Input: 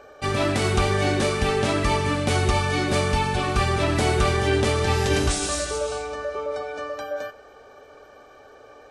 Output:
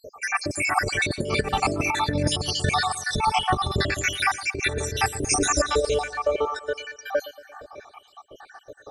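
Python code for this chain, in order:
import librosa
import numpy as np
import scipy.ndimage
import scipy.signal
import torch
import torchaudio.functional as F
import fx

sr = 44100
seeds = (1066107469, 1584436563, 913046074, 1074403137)

y = fx.spec_dropout(x, sr, seeds[0], share_pct=78)
y = fx.echo_feedback(y, sr, ms=115, feedback_pct=56, wet_db=-17.0)
y = fx.over_compress(y, sr, threshold_db=-28.0, ratio=-0.5)
y = y * 10.0 ** (7.0 / 20.0)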